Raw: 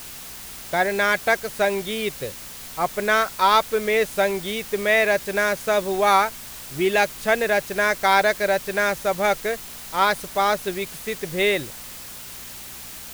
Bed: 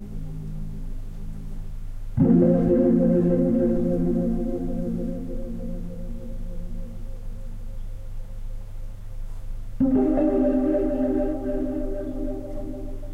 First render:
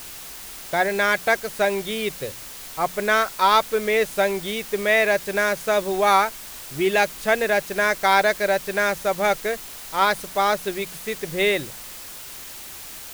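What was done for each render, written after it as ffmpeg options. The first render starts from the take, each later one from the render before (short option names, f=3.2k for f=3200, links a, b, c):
-af "bandreject=f=60:t=h:w=4,bandreject=f=120:t=h:w=4,bandreject=f=180:t=h:w=4,bandreject=f=240:t=h:w=4"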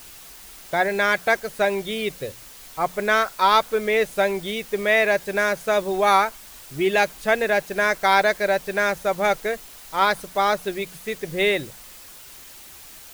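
-af "afftdn=nr=6:nf=-38"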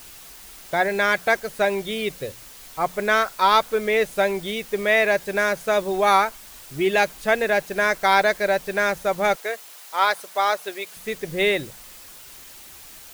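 -filter_complex "[0:a]asettb=1/sr,asplit=3[a][b][c];[a]atrim=end=9.354[d];[b]atrim=start=9.35:end=10.97,asetpts=PTS-STARTPTS,afade=t=in:d=0.004:c=qsin,afade=t=out:st=1.616:d=0.004:c=qsin,highpass=500[e];[c]atrim=start=10.966[f];[d][e]acrossfade=d=0.004:c1=hsin:c2=qsin[g];[g][f]acrossfade=d=0.004:c1=qsin:c2=hsin"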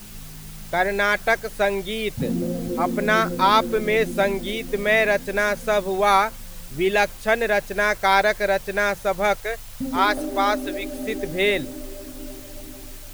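-filter_complex "[1:a]volume=-8dB[a];[0:a][a]amix=inputs=2:normalize=0"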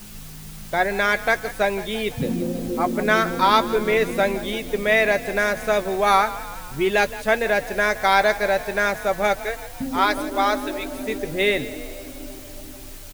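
-filter_complex "[0:a]asplit=2[a][b];[b]adelay=14,volume=-14dB[c];[a][c]amix=inputs=2:normalize=0,asplit=7[d][e][f][g][h][i][j];[e]adelay=168,afreqshift=34,volume=-16dB[k];[f]adelay=336,afreqshift=68,volume=-20.6dB[l];[g]adelay=504,afreqshift=102,volume=-25.2dB[m];[h]adelay=672,afreqshift=136,volume=-29.7dB[n];[i]adelay=840,afreqshift=170,volume=-34.3dB[o];[j]adelay=1008,afreqshift=204,volume=-38.9dB[p];[d][k][l][m][n][o][p]amix=inputs=7:normalize=0"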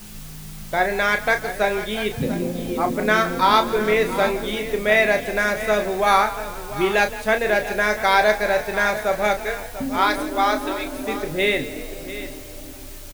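-filter_complex "[0:a]asplit=2[a][b];[b]adelay=33,volume=-8dB[c];[a][c]amix=inputs=2:normalize=0,aecho=1:1:692:0.211"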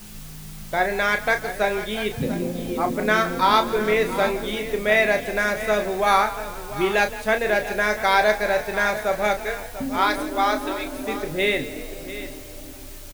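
-af "volume=-1.5dB"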